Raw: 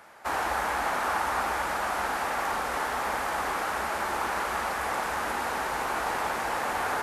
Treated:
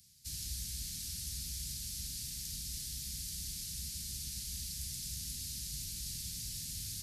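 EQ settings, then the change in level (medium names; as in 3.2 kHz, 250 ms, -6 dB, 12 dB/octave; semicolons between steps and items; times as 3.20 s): Chebyshev band-stop 140–4600 Hz, order 3; +3.0 dB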